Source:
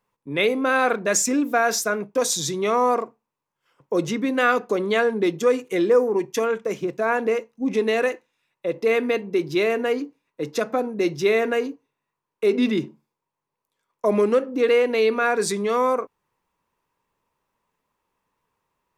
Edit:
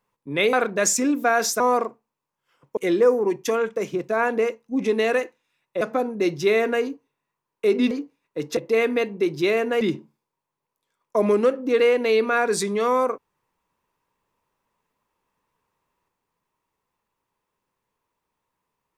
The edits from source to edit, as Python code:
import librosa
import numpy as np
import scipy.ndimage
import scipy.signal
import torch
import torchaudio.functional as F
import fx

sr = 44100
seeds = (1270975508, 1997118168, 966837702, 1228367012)

y = fx.edit(x, sr, fx.cut(start_s=0.53, length_s=0.29),
    fx.cut(start_s=1.89, length_s=0.88),
    fx.cut(start_s=3.94, length_s=1.72),
    fx.swap(start_s=8.7, length_s=1.24, other_s=10.6, other_length_s=2.1), tone=tone)